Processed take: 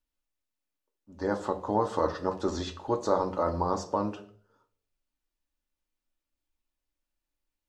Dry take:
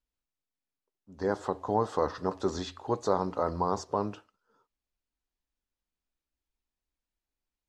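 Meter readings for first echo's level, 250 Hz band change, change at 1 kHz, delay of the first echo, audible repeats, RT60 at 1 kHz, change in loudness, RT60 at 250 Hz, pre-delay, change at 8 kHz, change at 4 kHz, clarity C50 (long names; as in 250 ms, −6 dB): no echo audible, +2.0 dB, +1.0 dB, no echo audible, no echo audible, 0.45 s, +1.0 dB, 0.60 s, 3 ms, +0.5 dB, +1.0 dB, 15.0 dB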